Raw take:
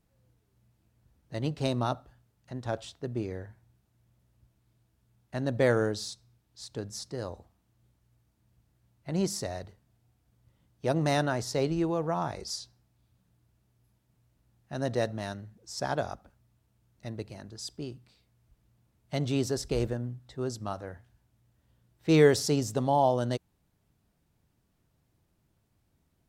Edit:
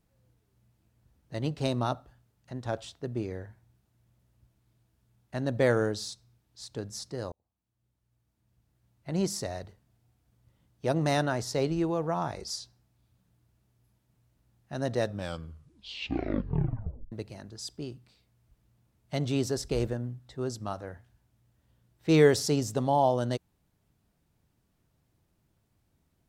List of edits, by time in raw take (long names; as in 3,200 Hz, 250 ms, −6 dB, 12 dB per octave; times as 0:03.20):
0:07.32–0:09.14: fade in
0:15.00: tape stop 2.12 s